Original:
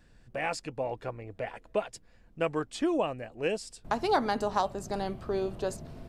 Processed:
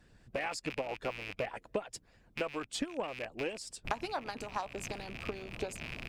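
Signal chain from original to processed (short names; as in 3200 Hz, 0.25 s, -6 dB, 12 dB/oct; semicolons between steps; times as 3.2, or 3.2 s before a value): rattling part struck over -46 dBFS, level -28 dBFS; compressor 6:1, threshold -34 dBFS, peak gain reduction 13 dB; added harmonics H 6 -28 dB, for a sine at -19.5 dBFS; harmonic-percussive split harmonic -13 dB; gain +3.5 dB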